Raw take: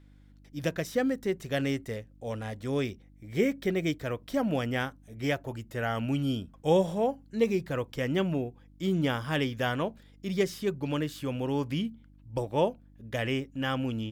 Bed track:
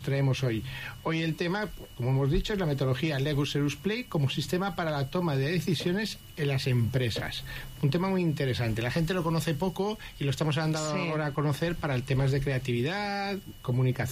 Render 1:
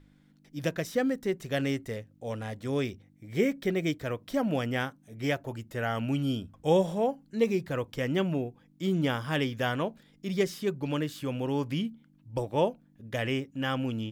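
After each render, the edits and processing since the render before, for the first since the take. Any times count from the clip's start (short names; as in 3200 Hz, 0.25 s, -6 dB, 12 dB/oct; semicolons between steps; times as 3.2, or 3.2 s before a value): de-hum 50 Hz, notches 2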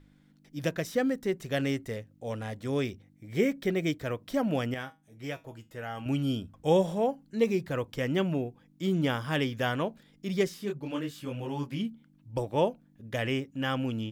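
4.74–6.06 resonator 160 Hz, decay 0.23 s, mix 70%; 10.48–11.79 detuned doubles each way 37 cents -> 18 cents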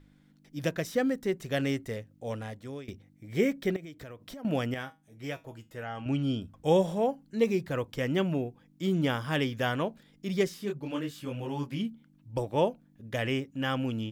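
2.32–2.88 fade out, to -21.5 dB; 3.76–4.45 compressor 16:1, threshold -40 dBFS; 5.83–6.42 air absorption 72 m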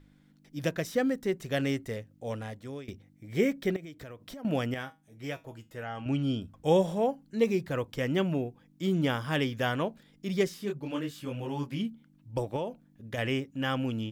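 12.56–13.18 compressor, threshold -29 dBFS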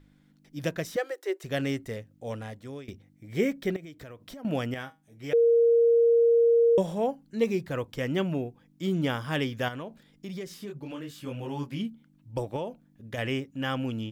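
0.96–1.44 Chebyshev high-pass 320 Hz, order 8; 5.33–6.78 bleep 466 Hz -17 dBFS; 9.68–11.1 compressor 5:1, threshold -34 dBFS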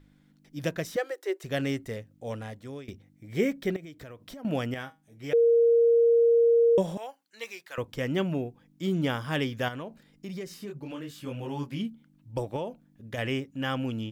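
6.97–7.78 HPF 1200 Hz; 9.84–10.88 notch 3400 Hz, Q 11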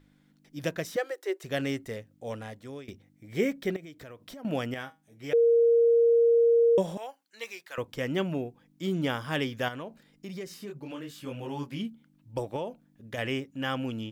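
low shelf 150 Hz -6 dB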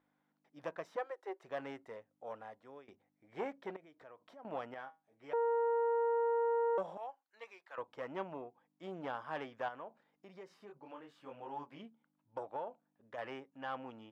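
tube stage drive 21 dB, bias 0.5; band-pass 880 Hz, Q 1.8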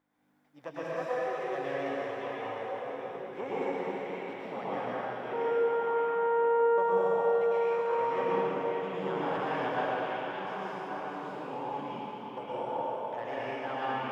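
delay with a stepping band-pass 0.57 s, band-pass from 2800 Hz, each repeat -1.4 oct, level -1.5 dB; plate-style reverb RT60 4.2 s, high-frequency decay 0.9×, pre-delay 95 ms, DRR -10 dB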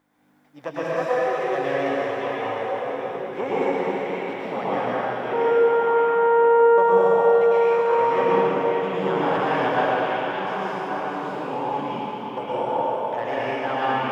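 gain +10 dB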